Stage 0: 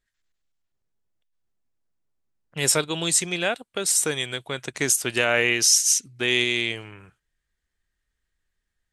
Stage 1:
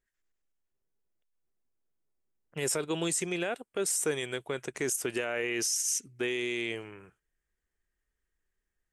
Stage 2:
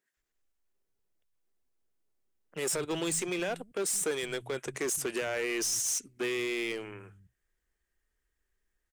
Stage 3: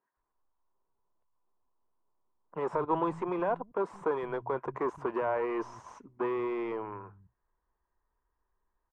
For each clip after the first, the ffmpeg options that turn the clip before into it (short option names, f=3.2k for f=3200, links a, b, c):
-af "equalizer=f=100:t=o:w=0.67:g=-5,equalizer=f=400:t=o:w=0.67:g=6,equalizer=f=4k:t=o:w=0.67:g=-9,alimiter=limit=-16dB:level=0:latency=1:release=37,volume=-4.5dB"
-filter_complex "[0:a]asplit=2[a][b];[b]aeval=exprs='0.0224*(abs(mod(val(0)/0.0224+3,4)-2)-1)':c=same,volume=-4dB[c];[a][c]amix=inputs=2:normalize=0,acrossover=split=160[d][e];[d]adelay=170[f];[f][e]amix=inputs=2:normalize=0,volume=-1.5dB"
-af "lowpass=f=1k:t=q:w=7.5"